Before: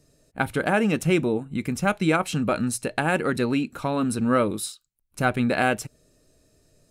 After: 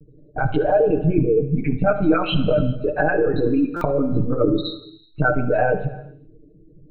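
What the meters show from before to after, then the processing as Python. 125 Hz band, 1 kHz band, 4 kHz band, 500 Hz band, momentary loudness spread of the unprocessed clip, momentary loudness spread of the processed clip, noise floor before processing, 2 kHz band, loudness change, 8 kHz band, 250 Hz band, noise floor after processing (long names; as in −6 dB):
+6.0 dB, +1.5 dB, +2.5 dB, +7.0 dB, 8 LU, 8 LU, −70 dBFS, 0.0 dB, +4.0 dB, below −30 dB, +3.0 dB, −51 dBFS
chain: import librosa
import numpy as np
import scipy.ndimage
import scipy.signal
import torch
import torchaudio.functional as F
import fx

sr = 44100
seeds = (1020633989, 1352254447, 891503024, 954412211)

p1 = fx.envelope_sharpen(x, sr, power=3.0)
p2 = fx.peak_eq(p1, sr, hz=1500.0, db=-3.5, octaves=1.1)
p3 = fx.lpc_vocoder(p2, sr, seeds[0], excitation='pitch_kept', order=16)
p4 = fx.peak_eq(p3, sr, hz=230.0, db=-5.0, octaves=0.35)
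p5 = fx.over_compress(p4, sr, threshold_db=-29.0, ratio=-0.5)
p6 = p4 + F.gain(torch.from_numpy(p5), 0.0).numpy()
p7 = p6 + 0.9 * np.pad(p6, (int(6.6 * sr / 1000.0), 0))[:len(p6)]
p8 = p7 + fx.echo_feedback(p7, sr, ms=72, feedback_pct=40, wet_db=-16.5, dry=0)
p9 = fx.rev_gated(p8, sr, seeds[1], gate_ms=440, shape='falling', drr_db=10.5)
y = fx.buffer_glitch(p9, sr, at_s=(3.76,), block=256, repeats=8)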